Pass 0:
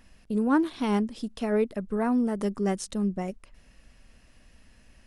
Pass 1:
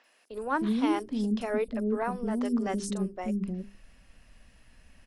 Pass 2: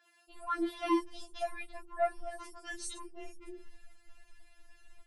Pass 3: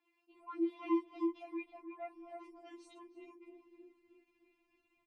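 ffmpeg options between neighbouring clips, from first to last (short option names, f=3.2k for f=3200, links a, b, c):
-filter_complex "[0:a]bandreject=f=50:t=h:w=6,bandreject=f=100:t=h:w=6,bandreject=f=150:t=h:w=6,bandreject=f=200:t=h:w=6,bandreject=f=250:t=h:w=6,bandreject=f=300:t=h:w=6,bandreject=f=350:t=h:w=6,bandreject=f=400:t=h:w=6,acrossover=split=380|5800[a][b][c];[c]adelay=40[d];[a]adelay=310[e];[e][b][d]amix=inputs=3:normalize=0"
-af "afftfilt=real='re*4*eq(mod(b,16),0)':imag='im*4*eq(mod(b,16),0)':win_size=2048:overlap=0.75"
-filter_complex "[0:a]asplit=3[a][b][c];[a]bandpass=f=300:t=q:w=8,volume=0dB[d];[b]bandpass=f=870:t=q:w=8,volume=-6dB[e];[c]bandpass=f=2.24k:t=q:w=8,volume=-9dB[f];[d][e][f]amix=inputs=3:normalize=0,asplit=2[g][h];[h]adelay=314,lowpass=f=910:p=1,volume=-3dB,asplit=2[i][j];[j]adelay=314,lowpass=f=910:p=1,volume=0.44,asplit=2[k][l];[l]adelay=314,lowpass=f=910:p=1,volume=0.44,asplit=2[m][n];[n]adelay=314,lowpass=f=910:p=1,volume=0.44,asplit=2[o][p];[p]adelay=314,lowpass=f=910:p=1,volume=0.44,asplit=2[q][r];[r]adelay=314,lowpass=f=910:p=1,volume=0.44[s];[i][k][m][o][q][s]amix=inputs=6:normalize=0[t];[g][t]amix=inputs=2:normalize=0,volume=6.5dB"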